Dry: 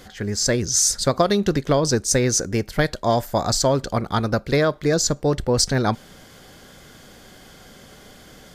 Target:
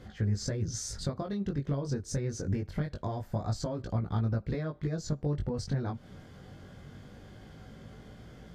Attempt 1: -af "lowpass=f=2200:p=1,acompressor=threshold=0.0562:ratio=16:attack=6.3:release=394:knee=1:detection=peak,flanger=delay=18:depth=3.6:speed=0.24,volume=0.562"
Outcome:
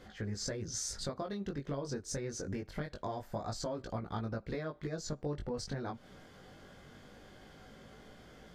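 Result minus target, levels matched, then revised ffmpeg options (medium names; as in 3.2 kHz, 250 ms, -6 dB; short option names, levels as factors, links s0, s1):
125 Hz band -5.0 dB
-af "lowpass=f=2200:p=1,acompressor=threshold=0.0562:ratio=16:attack=6.3:release=394:knee=1:detection=peak,equalizer=f=95:t=o:w=2.5:g=12,flanger=delay=18:depth=3.6:speed=0.24,volume=0.562"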